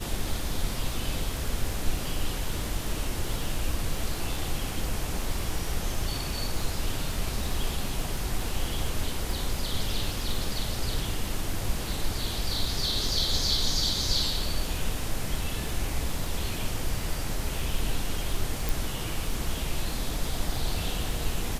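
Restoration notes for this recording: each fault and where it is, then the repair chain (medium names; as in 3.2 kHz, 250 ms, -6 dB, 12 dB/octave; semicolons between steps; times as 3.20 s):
crackle 32 per s -33 dBFS
18.69 s: pop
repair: de-click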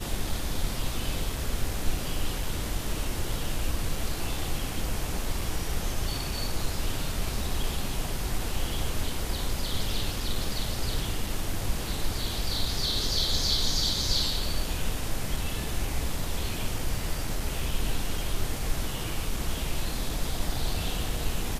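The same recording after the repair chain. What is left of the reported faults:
18.69 s: pop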